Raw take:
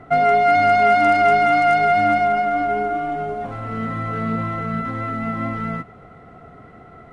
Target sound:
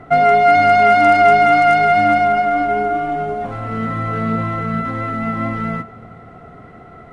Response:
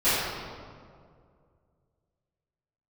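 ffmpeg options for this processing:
-filter_complex "[0:a]asplit=2[a][b];[1:a]atrim=start_sample=2205[c];[b][c]afir=irnorm=-1:irlink=0,volume=-35dB[d];[a][d]amix=inputs=2:normalize=0,volume=3.5dB"

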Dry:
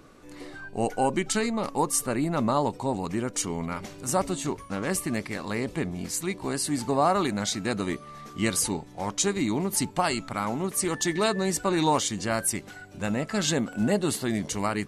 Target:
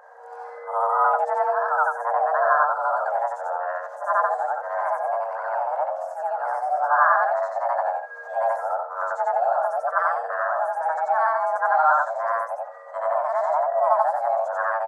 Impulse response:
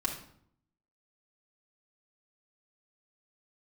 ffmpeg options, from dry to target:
-filter_complex "[0:a]afftfilt=real='re':imag='-im':win_size=8192:overlap=0.75,acrossover=split=110|1500[a][b][c];[c]acompressor=threshold=-52dB:ratio=5[d];[a][b][d]amix=inputs=3:normalize=0,bandreject=f=690:w=20,aresample=32000,aresample=44100,afreqshift=460,firequalizer=gain_entry='entry(120,0);entry(170,7);entry(1600,9);entry(2400,-18);entry(6200,-9);entry(9000,-13)':delay=0.05:min_phase=1,volume=2dB"

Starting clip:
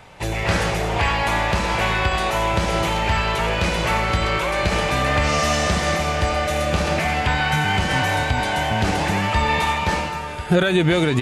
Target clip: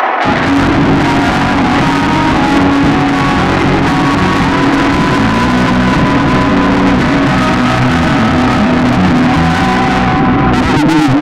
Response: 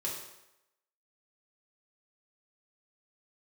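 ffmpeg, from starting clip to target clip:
-filter_complex "[0:a]aresample=16000,aeval=exprs='0.473*sin(PI/2*2.51*val(0)/0.473)':c=same,aresample=44100,acrossover=split=130[a][b];[a]acompressor=threshold=-25dB:ratio=6[c];[c][b]amix=inputs=2:normalize=0,firequalizer=gain_entry='entry(110,0);entry(320,14);entry(540,-8);entry(1100,0);entry(5300,-29)':delay=0.05:min_phase=1,asetrate=37084,aresample=44100,atempo=1.18921,equalizer=f=4.3k:t=o:w=0.77:g=5.5,acrossover=split=180[d][e];[e]acompressor=mode=upward:threshold=-21dB:ratio=2.5[f];[d][f]amix=inputs=2:normalize=0,highpass=53,asoftclip=type=tanh:threshold=-21.5dB,acrossover=split=480[g][h];[g]adelay=250[i];[i][h]amix=inputs=2:normalize=0,alimiter=level_in=25.5dB:limit=-1dB:release=50:level=0:latency=1,volume=-1dB"

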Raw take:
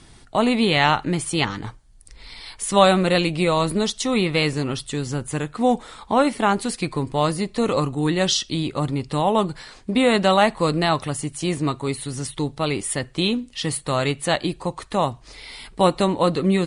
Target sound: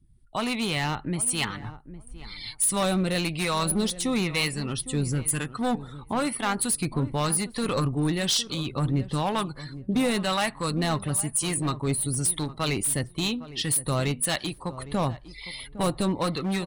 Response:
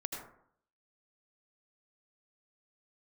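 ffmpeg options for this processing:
-filter_complex "[0:a]afftdn=nr=24:nf=-40,equalizer=f=540:t=o:w=2.2:g=-6.5,dynaudnorm=f=210:g=3:m=11.5dB,aexciter=amount=6:drive=5.8:freq=9.1k,asoftclip=type=hard:threshold=-11dB,acrossover=split=740[a][b];[a]aeval=exprs='val(0)*(1-0.5/2+0.5/2*cos(2*PI*1*n/s))':c=same[c];[b]aeval=exprs='val(0)*(1-0.5/2-0.5/2*cos(2*PI*1*n/s))':c=same[d];[c][d]amix=inputs=2:normalize=0,asplit=2[e][f];[f]adelay=809,lowpass=f=970:p=1,volume=-14dB,asplit=2[g][h];[h]adelay=809,lowpass=f=970:p=1,volume=0.17[i];[e][g][i]amix=inputs=3:normalize=0,volume=-7dB"

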